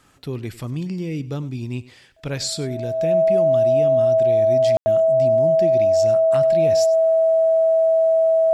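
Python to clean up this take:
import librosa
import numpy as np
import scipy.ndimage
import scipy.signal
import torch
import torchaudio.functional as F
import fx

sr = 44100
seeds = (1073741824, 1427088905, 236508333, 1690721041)

y = fx.notch(x, sr, hz=650.0, q=30.0)
y = fx.fix_ambience(y, sr, seeds[0], print_start_s=1.79, print_end_s=2.29, start_s=4.77, end_s=4.86)
y = fx.fix_echo_inverse(y, sr, delay_ms=99, level_db=-18.5)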